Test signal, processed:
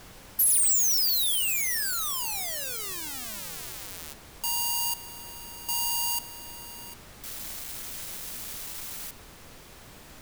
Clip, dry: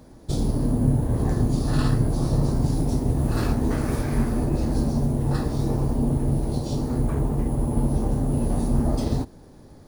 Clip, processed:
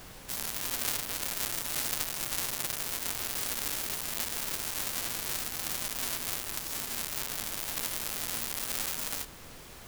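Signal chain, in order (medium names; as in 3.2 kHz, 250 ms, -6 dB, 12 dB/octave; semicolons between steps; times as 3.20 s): square wave that keeps the level; differentiator; added noise pink -48 dBFS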